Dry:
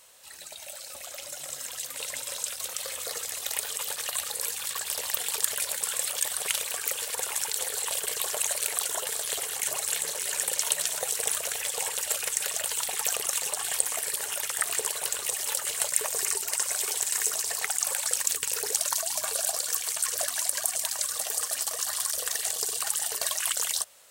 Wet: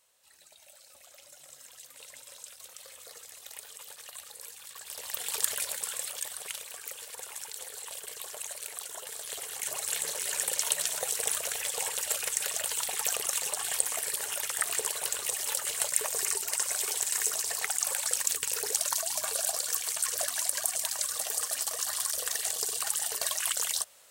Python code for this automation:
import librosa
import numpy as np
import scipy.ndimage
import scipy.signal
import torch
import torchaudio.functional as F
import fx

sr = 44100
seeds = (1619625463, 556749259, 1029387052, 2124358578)

y = fx.gain(x, sr, db=fx.line((4.71, -14.0), (5.42, -1.5), (6.61, -11.0), (8.91, -11.0), (10.06, -2.0)))